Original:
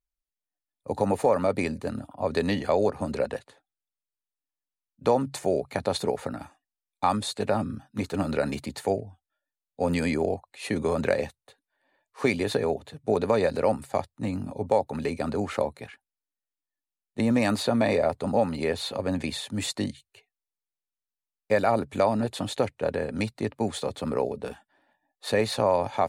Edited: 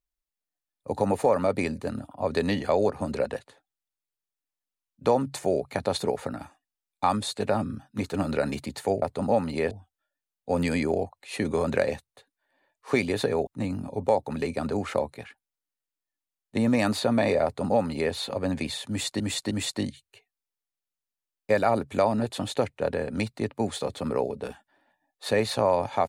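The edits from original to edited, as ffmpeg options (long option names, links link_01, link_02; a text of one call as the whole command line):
ffmpeg -i in.wav -filter_complex "[0:a]asplit=6[link_01][link_02][link_03][link_04][link_05][link_06];[link_01]atrim=end=9.022[link_07];[link_02]atrim=start=18.068:end=18.762[link_08];[link_03]atrim=start=9.018:end=12.782[link_09];[link_04]atrim=start=14.098:end=19.832[link_10];[link_05]atrim=start=19.518:end=19.832[link_11];[link_06]atrim=start=19.518[link_12];[link_07][link_08]acrossfade=duration=0.004:curve1=hsin:curve2=hsin[link_13];[link_13][link_09]acrossfade=duration=0.004:curve1=hsin:curve2=hsin[link_14];[link_14][link_10]acrossfade=duration=0.004:curve1=hsin:curve2=hsin[link_15];[link_15][link_11]acrossfade=duration=0.004:curve1=hsin:curve2=hsin[link_16];[link_16][link_12]acrossfade=duration=0.004:curve1=hsin:curve2=hsin" out.wav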